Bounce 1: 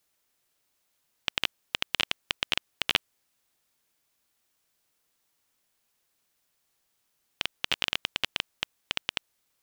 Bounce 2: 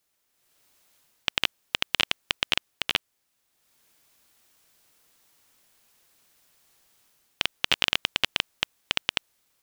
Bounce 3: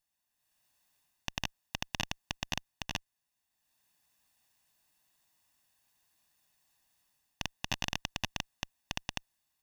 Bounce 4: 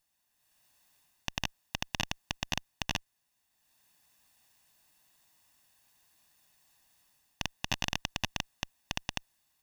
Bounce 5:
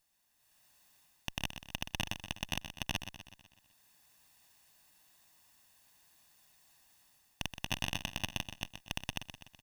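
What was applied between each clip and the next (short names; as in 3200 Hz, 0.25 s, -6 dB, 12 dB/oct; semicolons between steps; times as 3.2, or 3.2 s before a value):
AGC gain up to 12 dB; gain -1 dB
minimum comb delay 1.1 ms; gain -8.5 dB
limiter -18 dBFS, peak gain reduction 4.5 dB; gain +6 dB
soft clip -19.5 dBFS, distortion -10 dB; on a send: feedback echo 0.125 s, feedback 53%, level -10 dB; on the sum: gain +1.5 dB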